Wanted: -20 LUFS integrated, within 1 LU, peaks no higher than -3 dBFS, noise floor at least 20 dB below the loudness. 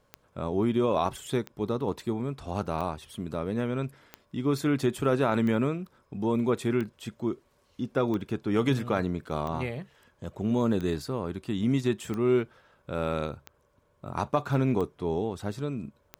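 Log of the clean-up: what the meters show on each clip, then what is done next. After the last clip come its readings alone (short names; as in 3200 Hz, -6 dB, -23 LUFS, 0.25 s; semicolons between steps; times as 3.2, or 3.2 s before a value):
clicks 13; loudness -29.5 LUFS; peak -11.0 dBFS; loudness target -20.0 LUFS
-> de-click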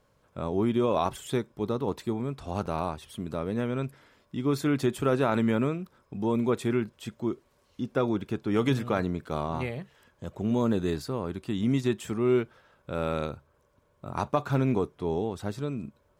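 clicks 0; loudness -29.5 LUFS; peak -11.0 dBFS; loudness target -20.0 LUFS
-> gain +9.5 dB; limiter -3 dBFS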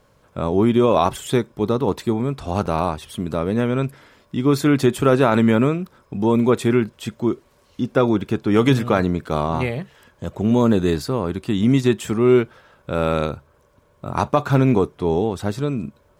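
loudness -20.0 LUFS; peak -3.0 dBFS; noise floor -58 dBFS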